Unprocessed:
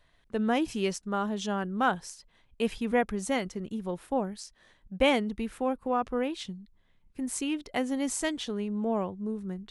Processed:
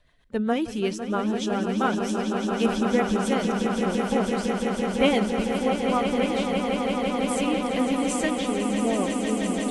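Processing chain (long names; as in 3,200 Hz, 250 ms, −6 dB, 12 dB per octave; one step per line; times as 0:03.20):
spectral magnitudes quantised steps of 15 dB
rotating-speaker cabinet horn 7.5 Hz
on a send: echo that builds up and dies away 168 ms, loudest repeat 8, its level −9 dB
on the sum: level +4.5 dB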